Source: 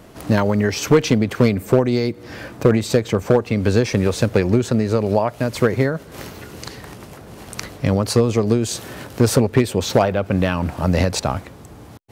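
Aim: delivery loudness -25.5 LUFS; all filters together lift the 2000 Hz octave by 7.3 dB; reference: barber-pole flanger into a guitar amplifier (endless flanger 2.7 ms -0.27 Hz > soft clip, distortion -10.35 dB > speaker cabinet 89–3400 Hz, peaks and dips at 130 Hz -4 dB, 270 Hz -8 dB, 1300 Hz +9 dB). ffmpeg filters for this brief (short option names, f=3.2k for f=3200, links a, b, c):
-filter_complex "[0:a]equalizer=f=2k:t=o:g=7,asplit=2[a][b];[b]adelay=2.7,afreqshift=-0.27[c];[a][c]amix=inputs=2:normalize=1,asoftclip=threshold=-17.5dB,highpass=89,equalizer=f=130:t=q:w=4:g=-4,equalizer=f=270:t=q:w=4:g=-8,equalizer=f=1.3k:t=q:w=4:g=9,lowpass=f=3.4k:w=0.5412,lowpass=f=3.4k:w=1.3066,volume=1dB"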